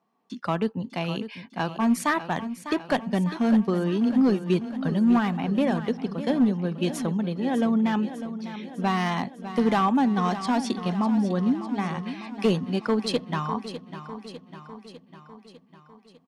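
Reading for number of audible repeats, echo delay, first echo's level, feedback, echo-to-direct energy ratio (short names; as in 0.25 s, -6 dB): 6, 0.601 s, -12.0 dB, 59%, -10.0 dB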